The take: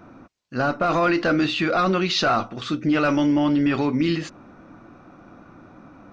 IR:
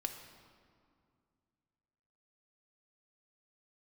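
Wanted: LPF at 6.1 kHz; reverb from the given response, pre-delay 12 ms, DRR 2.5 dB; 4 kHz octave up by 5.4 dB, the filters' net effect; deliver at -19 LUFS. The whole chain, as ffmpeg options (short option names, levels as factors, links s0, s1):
-filter_complex "[0:a]lowpass=6100,equalizer=f=4000:t=o:g=7,asplit=2[s0][s1];[1:a]atrim=start_sample=2205,adelay=12[s2];[s1][s2]afir=irnorm=-1:irlink=0,volume=0.75[s3];[s0][s3]amix=inputs=2:normalize=0"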